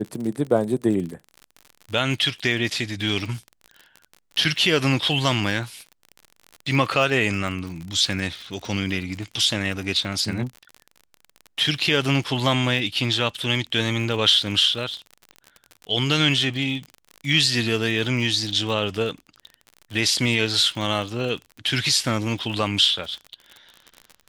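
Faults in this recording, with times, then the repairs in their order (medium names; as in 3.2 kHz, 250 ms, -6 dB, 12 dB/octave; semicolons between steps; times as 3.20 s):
crackle 45 per s -30 dBFS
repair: de-click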